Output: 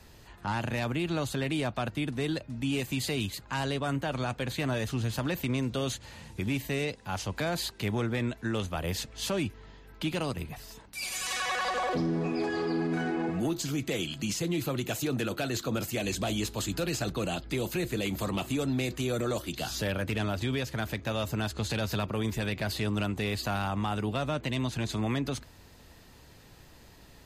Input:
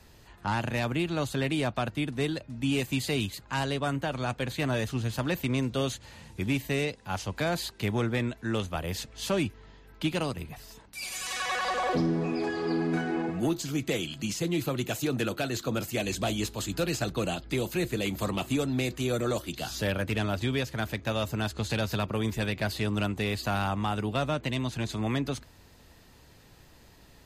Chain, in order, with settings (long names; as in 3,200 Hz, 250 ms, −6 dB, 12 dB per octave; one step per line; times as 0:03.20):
brickwall limiter −24 dBFS, peak gain reduction 5.5 dB
level +1.5 dB